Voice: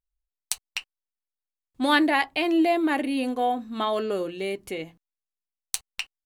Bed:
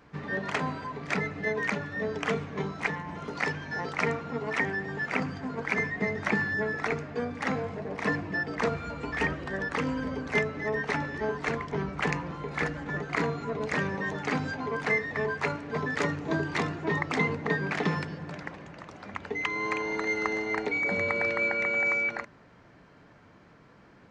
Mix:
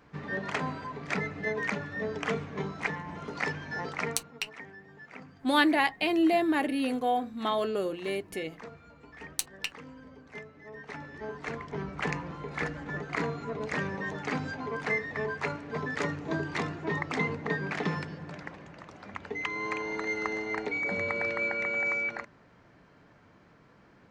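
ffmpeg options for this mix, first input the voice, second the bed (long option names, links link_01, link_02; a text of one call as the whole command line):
ffmpeg -i stem1.wav -i stem2.wav -filter_complex "[0:a]adelay=3650,volume=-3dB[link_01];[1:a]volume=12.5dB,afade=type=out:start_time=3.88:duration=0.44:silence=0.16788,afade=type=in:start_time=10.66:duration=1.43:silence=0.188365[link_02];[link_01][link_02]amix=inputs=2:normalize=0" out.wav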